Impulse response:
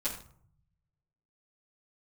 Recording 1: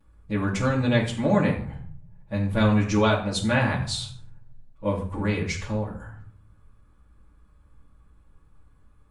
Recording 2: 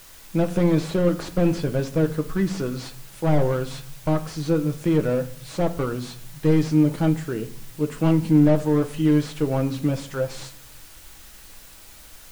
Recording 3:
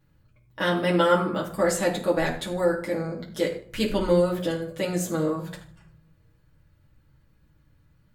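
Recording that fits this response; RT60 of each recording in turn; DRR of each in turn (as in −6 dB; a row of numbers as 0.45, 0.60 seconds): 1; 0.55, 0.60, 0.55 seconds; −13.0, 6.0, −4.0 decibels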